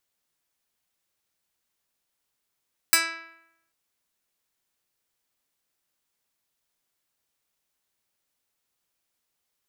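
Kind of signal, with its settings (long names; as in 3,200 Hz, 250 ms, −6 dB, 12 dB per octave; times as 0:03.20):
Karplus-Strong string E4, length 0.79 s, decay 0.84 s, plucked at 0.1, medium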